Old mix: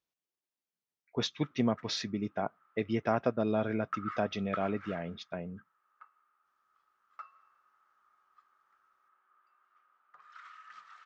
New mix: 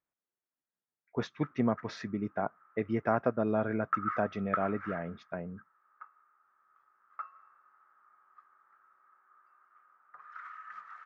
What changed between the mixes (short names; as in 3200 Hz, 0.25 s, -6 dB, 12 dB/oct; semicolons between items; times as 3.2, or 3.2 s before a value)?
background +3.5 dB; master: add resonant high shelf 2400 Hz -11 dB, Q 1.5